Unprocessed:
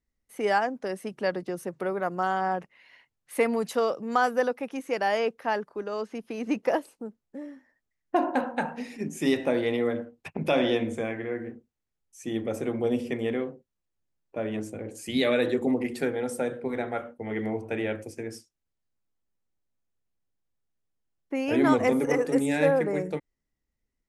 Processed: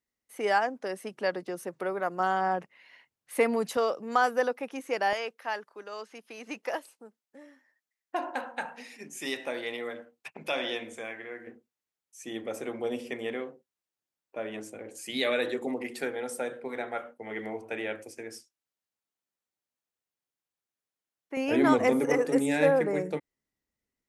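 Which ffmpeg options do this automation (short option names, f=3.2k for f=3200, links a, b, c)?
-af "asetnsamples=n=441:p=0,asendcmd='2.2 highpass f 160;3.77 highpass f 360;5.13 highpass f 1400;11.47 highpass f 660;21.37 highpass f 170',highpass=f=380:p=1"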